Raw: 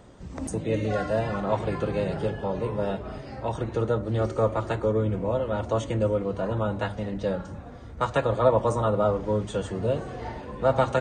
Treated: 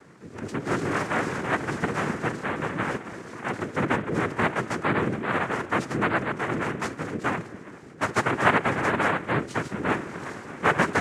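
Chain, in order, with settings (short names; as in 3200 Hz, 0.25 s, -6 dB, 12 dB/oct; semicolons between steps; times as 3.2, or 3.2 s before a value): air absorption 53 m; noise vocoder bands 3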